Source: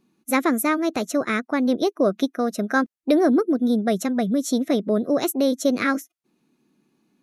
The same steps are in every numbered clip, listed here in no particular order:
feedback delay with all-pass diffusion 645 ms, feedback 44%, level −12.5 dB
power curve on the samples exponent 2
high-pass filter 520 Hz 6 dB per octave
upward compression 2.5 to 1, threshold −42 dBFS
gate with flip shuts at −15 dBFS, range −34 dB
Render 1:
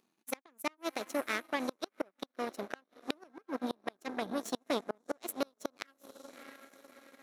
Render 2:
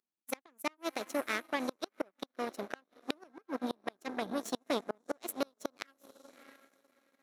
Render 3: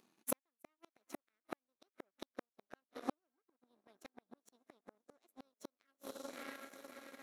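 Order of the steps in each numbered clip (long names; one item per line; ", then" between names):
feedback delay with all-pass diffusion, then power curve on the samples, then gate with flip, then high-pass filter, then upward compression
upward compression, then feedback delay with all-pass diffusion, then power curve on the samples, then gate with flip, then high-pass filter
feedback delay with all-pass diffusion, then gate with flip, then power curve on the samples, then high-pass filter, then upward compression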